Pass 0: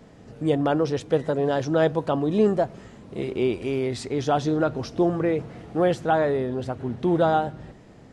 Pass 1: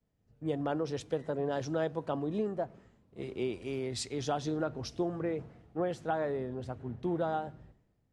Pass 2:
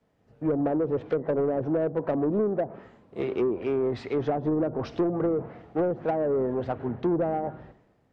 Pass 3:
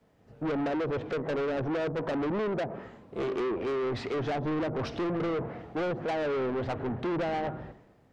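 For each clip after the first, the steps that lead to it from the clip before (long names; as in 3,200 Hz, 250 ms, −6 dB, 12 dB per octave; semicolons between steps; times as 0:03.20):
downward compressor 10 to 1, threshold −21 dBFS, peak gain reduction 7.5 dB; multiband upward and downward expander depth 100%; level −7.5 dB
treble cut that deepens with the level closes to 430 Hz, closed at −29 dBFS; mid-hump overdrive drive 20 dB, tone 1,100 Hz, clips at −20.5 dBFS; level +5.5 dB
soft clipping −32.5 dBFS, distortion −7 dB; level +4.5 dB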